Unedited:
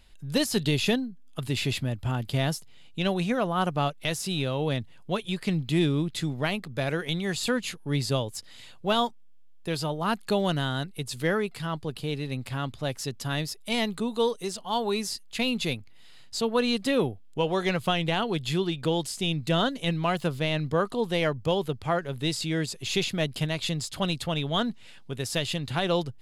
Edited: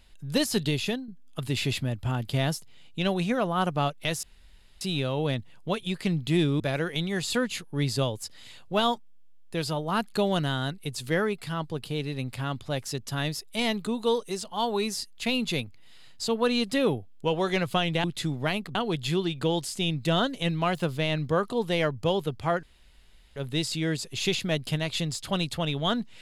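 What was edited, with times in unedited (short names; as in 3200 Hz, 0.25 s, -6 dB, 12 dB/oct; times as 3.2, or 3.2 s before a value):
0.54–1.08 fade out, to -9 dB
4.23 insert room tone 0.58 s
6.02–6.73 move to 18.17
22.05 insert room tone 0.73 s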